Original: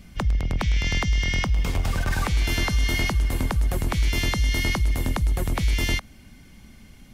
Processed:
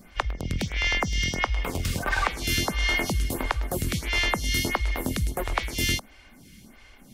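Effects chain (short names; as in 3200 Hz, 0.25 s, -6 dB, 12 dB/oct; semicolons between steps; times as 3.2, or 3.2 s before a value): low shelf 250 Hz -7.5 dB; photocell phaser 1.5 Hz; gain +5.5 dB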